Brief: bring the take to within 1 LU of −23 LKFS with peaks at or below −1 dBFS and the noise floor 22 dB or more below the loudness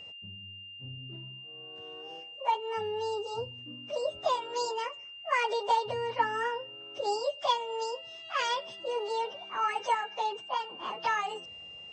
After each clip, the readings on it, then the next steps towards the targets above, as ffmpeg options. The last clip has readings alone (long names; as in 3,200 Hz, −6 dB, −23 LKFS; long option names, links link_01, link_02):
interfering tone 2,800 Hz; level of the tone −44 dBFS; integrated loudness −33.0 LKFS; sample peak −15.0 dBFS; target loudness −23.0 LKFS
→ -af "bandreject=frequency=2800:width=30"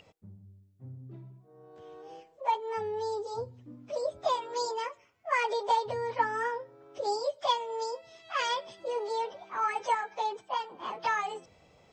interfering tone none found; integrated loudness −32.5 LKFS; sample peak −15.0 dBFS; target loudness −23.0 LKFS
→ -af "volume=9.5dB"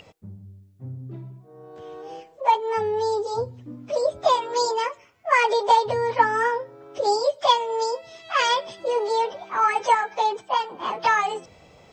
integrated loudness −23.0 LKFS; sample peak −5.5 dBFS; background noise floor −53 dBFS